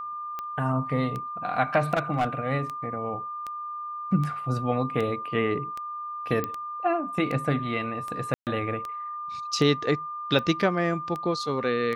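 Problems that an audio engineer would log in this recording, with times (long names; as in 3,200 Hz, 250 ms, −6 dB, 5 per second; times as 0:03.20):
scratch tick 78 rpm −20 dBFS
whistle 1,200 Hz −32 dBFS
0:01.94–0:02.27: clipping −19.5 dBFS
0:06.44: click −15 dBFS
0:08.34–0:08.47: drop-out 128 ms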